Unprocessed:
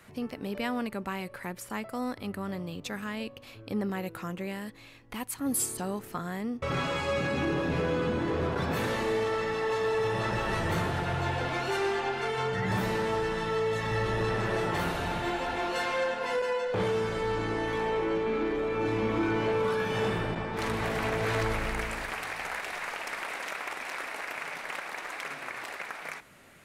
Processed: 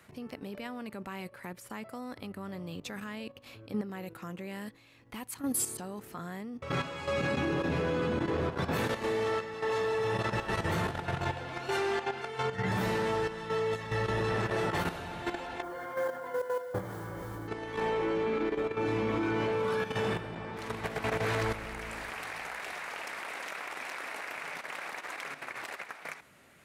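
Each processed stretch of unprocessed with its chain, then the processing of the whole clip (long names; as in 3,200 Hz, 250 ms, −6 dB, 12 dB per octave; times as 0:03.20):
0:15.62–0:17.48: Savitzky-Golay smoothing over 41 samples + noise that follows the level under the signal 24 dB + notch comb filter 220 Hz
whole clip: high-pass filter 49 Hz; output level in coarse steps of 10 dB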